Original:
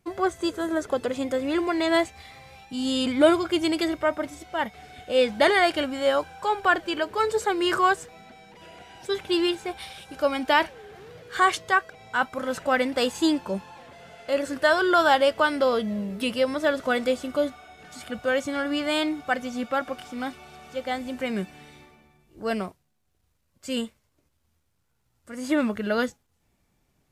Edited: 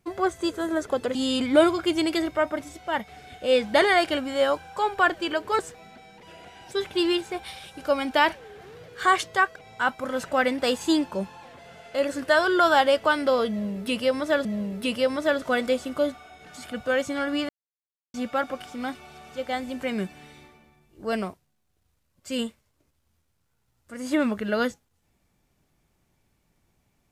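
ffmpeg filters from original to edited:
-filter_complex "[0:a]asplit=6[s0][s1][s2][s3][s4][s5];[s0]atrim=end=1.152[s6];[s1]atrim=start=2.808:end=7.252[s7];[s2]atrim=start=7.928:end=16.792[s8];[s3]atrim=start=15.828:end=18.87,asetpts=PTS-STARTPTS,afade=t=out:st=3.038:d=0.004:c=hsin[s9];[s4]atrim=start=18.87:end=19.52,asetpts=PTS-STARTPTS,volume=0[s10];[s5]atrim=start=19.52,asetpts=PTS-STARTPTS,afade=t=in:d=0.004:c=hsin[s11];[s6][s7]acrossfade=d=0.004:c1=hsin:c2=hsin[s12];[s12][s8]acrossfade=d=0.004:c1=hsin:c2=hsin[s13];[s9][s10][s11]concat=n=3:v=0:a=1[s14];[s13][s14]acrossfade=d=0.004:c1=hsin:c2=hsin"

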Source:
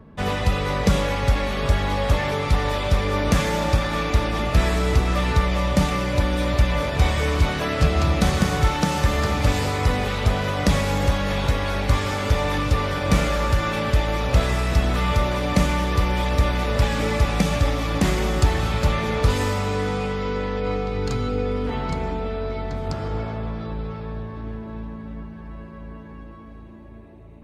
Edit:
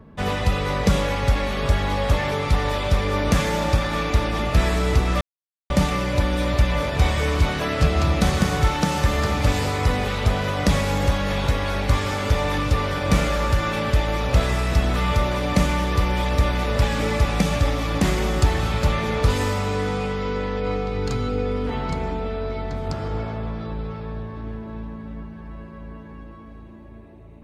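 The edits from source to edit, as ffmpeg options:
-filter_complex "[0:a]asplit=3[s0][s1][s2];[s0]atrim=end=5.21,asetpts=PTS-STARTPTS,afade=t=out:st=5.206:d=0.004:c=hsin[s3];[s1]atrim=start=5.21:end=5.7,asetpts=PTS-STARTPTS,volume=0[s4];[s2]atrim=start=5.7,asetpts=PTS-STARTPTS,afade=t=in:d=0.004:c=hsin[s5];[s3][s4][s5]concat=n=3:v=0:a=1"

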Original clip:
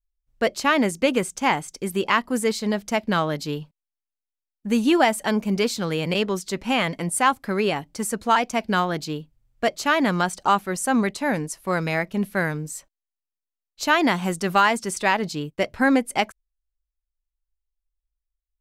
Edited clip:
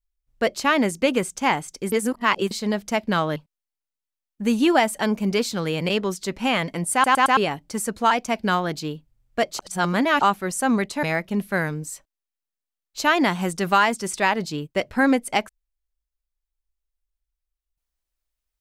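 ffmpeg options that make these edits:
-filter_complex "[0:a]asplit=11[s0][s1][s2][s3][s4][s5][s6][s7][s8][s9][s10];[s0]atrim=end=1.922[s11];[s1]atrim=start=1.918:end=2.512,asetpts=PTS-STARTPTS,areverse[s12];[s2]atrim=start=2.508:end=3.362[s13];[s3]atrim=start=3.608:end=7.292[s14];[s4]atrim=start=7.178:end=7.292[s15];[s5]atrim=start=7.178:end=7.292[s16];[s6]atrim=start=7.178:end=7.292[s17];[s7]atrim=start=7.618:end=9.842[s18];[s8]atrim=start=9.838:end=10.462,asetpts=PTS-STARTPTS,areverse[s19];[s9]atrim=start=10.458:end=11.282[s20];[s10]atrim=start=11.858[s21];[s11][s12]acrossfade=d=0.004:c1=hsin:c2=hsin[s22];[s22][s13]acrossfade=d=0.004:c1=hsin:c2=hsin[s23];[s23][s14]acrossfade=d=0.004:c1=hsin:c2=hsin[s24];[s24][s15]acrossfade=d=0.004:c1=hsin:c2=hsin[s25];[s25][s16]acrossfade=d=0.004:c1=hsin:c2=hsin[s26];[s26][s17]acrossfade=d=0.004:c1=hsin:c2=hsin[s27];[s27][s18]acrossfade=d=0.004:c1=hsin:c2=hsin[s28];[s28][s19]acrossfade=d=0.004:c1=hsin:c2=hsin[s29];[s29][s20]acrossfade=d=0.004:c1=hsin:c2=hsin[s30];[s30][s21]acrossfade=d=0.004:c1=hsin:c2=hsin"

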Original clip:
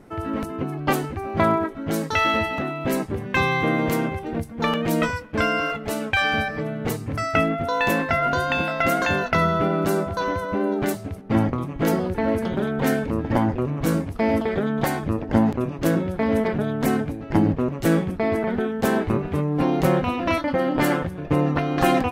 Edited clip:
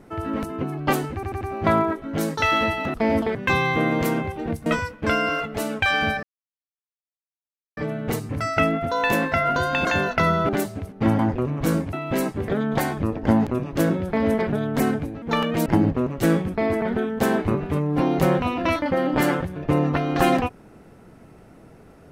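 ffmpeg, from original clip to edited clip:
-filter_complex "[0:a]asplit=15[s0][s1][s2][s3][s4][s5][s6][s7][s8][s9][s10][s11][s12][s13][s14];[s0]atrim=end=1.232[s15];[s1]atrim=start=1.138:end=1.232[s16];[s2]atrim=start=1.138:end=1.232[s17];[s3]atrim=start=1.138:end=2.672[s18];[s4]atrim=start=14.128:end=14.542[s19];[s5]atrim=start=3.218:end=4.532[s20];[s6]atrim=start=4.968:end=6.54,asetpts=PTS-STARTPTS,afade=t=out:st=1.568:d=0.004:c=hsin,apad=pad_dur=1.54[s21];[s7]atrim=start=6.54:end=8.622,asetpts=PTS-STARTPTS,afade=t=in:d=0.004:c=hsin[s22];[s8]atrim=start=8.998:end=9.642[s23];[s9]atrim=start=10.778:end=11.482[s24];[s10]atrim=start=13.388:end=14.132[s25];[s11]atrim=start=2.668:end=3.222[s26];[s12]atrim=start=14.538:end=17.282[s27];[s13]atrim=start=4.528:end=4.972[s28];[s14]atrim=start=17.278[s29];[s15][s16]acrossfade=d=0.004:c1=hsin:c2=hsin[s30];[s30][s17]acrossfade=d=0.004:c1=hsin:c2=hsin[s31];[s31][s18]acrossfade=d=0.004:c1=hsin:c2=hsin[s32];[s32][s19]acrossfade=d=0.004:c1=hsin:c2=hsin[s33];[s33][s20]acrossfade=d=0.004:c1=hsin:c2=hsin[s34];[s21][s22]concat=n=2:v=0:a=1[s35];[s34][s35]acrossfade=d=0.004:c1=hsin:c2=hsin[s36];[s36][s23]acrossfade=d=0.004:c1=hsin:c2=hsin[s37];[s37][s24]acrossfade=d=0.004:c1=hsin:c2=hsin[s38];[s38][s25]acrossfade=d=0.004:c1=hsin:c2=hsin[s39];[s39][s26]acrossfade=d=0.004:c1=hsin:c2=hsin[s40];[s40][s27]acrossfade=d=0.004:c1=hsin:c2=hsin[s41];[s41][s28]acrossfade=d=0.004:c1=hsin:c2=hsin[s42];[s42][s29]acrossfade=d=0.004:c1=hsin:c2=hsin"

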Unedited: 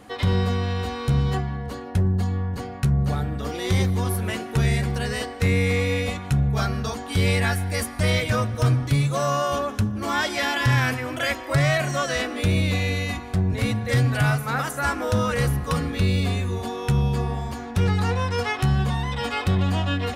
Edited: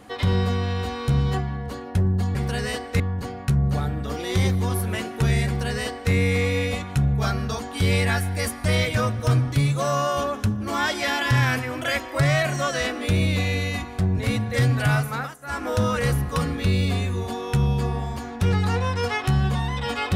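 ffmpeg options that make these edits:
-filter_complex "[0:a]asplit=5[s0][s1][s2][s3][s4];[s0]atrim=end=2.352[s5];[s1]atrim=start=4.818:end=5.472[s6];[s2]atrim=start=2.348:end=14.71,asetpts=PTS-STARTPTS,afade=t=out:st=12.092:d=0.27:silence=0.133352[s7];[s3]atrim=start=14.71:end=14.76,asetpts=PTS-STARTPTS,volume=0.133[s8];[s4]atrim=start=14.76,asetpts=PTS-STARTPTS,afade=t=in:d=0.27:silence=0.133352[s9];[s5][s6]acrossfade=d=0.004:c1=hsin:c2=hsin[s10];[s7][s8][s9]concat=n=3:v=0:a=1[s11];[s10][s11]acrossfade=d=0.004:c1=hsin:c2=hsin"

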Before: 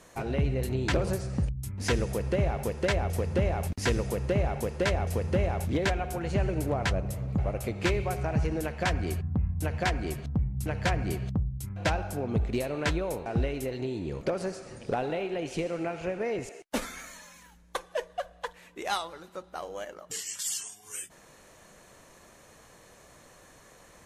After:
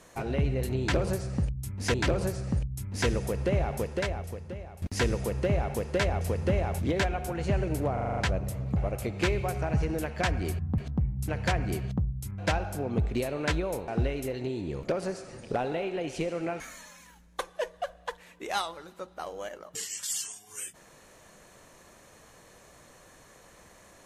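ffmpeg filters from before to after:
-filter_complex "[0:a]asplit=11[s0][s1][s2][s3][s4][s5][s6][s7][s8][s9][s10];[s0]atrim=end=1.942[s11];[s1]atrim=start=0.798:end=3.68,asetpts=PTS-STARTPTS,afade=t=out:st=1.882:d=1:c=qua:silence=0.158489[s12];[s2]atrim=start=3.68:end=6.832,asetpts=PTS-STARTPTS,afade=t=in:d=0.004:c=hsin:silence=0.158489[s13];[s3]atrim=start=6.788:end=6.832[s14];[s4]atrim=start=6.788:end=6.832[s15];[s5]atrim=start=6.788:end=6.832[s16];[s6]atrim=start=6.788:end=6.832[s17];[s7]atrim=start=6.788:end=6.832[s18];[s8]atrim=start=6.788:end=9.402[s19];[s9]atrim=start=10.158:end=15.982[s20];[s10]atrim=start=16.958[s21];[s12][s13]concat=n=2:v=0:a=1[s22];[s11][s22]acrossfade=d=0.004:c1=hsin:c2=hsin[s23];[s23][s14]acrossfade=d=0.004:c1=hsin:c2=hsin[s24];[s24][s15]acrossfade=d=0.004:c1=hsin:c2=hsin[s25];[s25][s16]acrossfade=d=0.004:c1=hsin:c2=hsin[s26];[s26][s17]acrossfade=d=0.004:c1=hsin:c2=hsin[s27];[s27][s18]acrossfade=d=0.004:c1=hsin:c2=hsin[s28];[s28][s19]acrossfade=d=0.004:c1=hsin:c2=hsin[s29];[s29][s20]acrossfade=d=0.004:c1=hsin:c2=hsin[s30];[s30][s21]acrossfade=d=0.004:c1=hsin:c2=hsin"

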